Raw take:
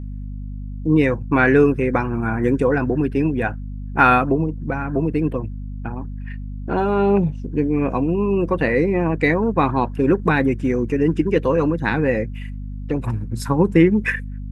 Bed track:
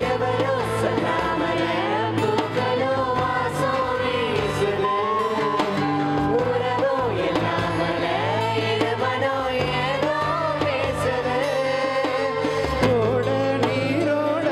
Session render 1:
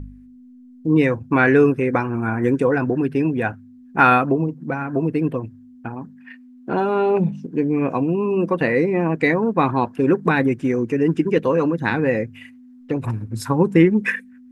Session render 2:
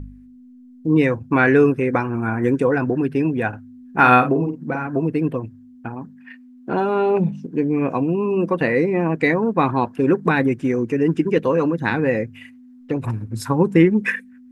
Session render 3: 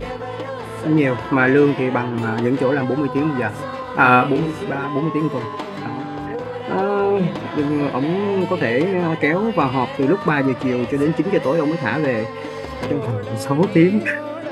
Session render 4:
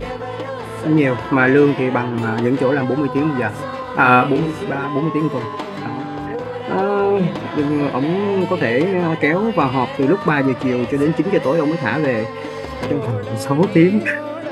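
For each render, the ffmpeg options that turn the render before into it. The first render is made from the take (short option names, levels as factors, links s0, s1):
-af "bandreject=f=50:t=h:w=4,bandreject=f=100:t=h:w=4,bandreject=f=150:t=h:w=4,bandreject=f=200:t=h:w=4"
-filter_complex "[0:a]asettb=1/sr,asplit=3[s0][s1][s2];[s0]atrim=end=3.484[s3];[s1]atrim=start=3.48:end=4.87,asetpts=PTS-STARTPTS,afade=t=in:d=0.004:c=qsin,afade=t=out:st=1.386:d=0.004:c=qsin,asplit=2[s4][s5];[s5]adelay=48,volume=0.447[s6];[s4][s6]amix=inputs=2:normalize=0,atrim=end_sample=61299[s7];[s2]atrim=start=4.866[s8];[s3][s7]acrossfade=d=0.004:c1=hsin:c2=qsin[s9];[s9][s8]acrossfade=d=0.004:c1=qsin:c2=hsin"
-filter_complex "[1:a]volume=0.473[s0];[0:a][s0]amix=inputs=2:normalize=0"
-af "volume=1.19,alimiter=limit=0.794:level=0:latency=1"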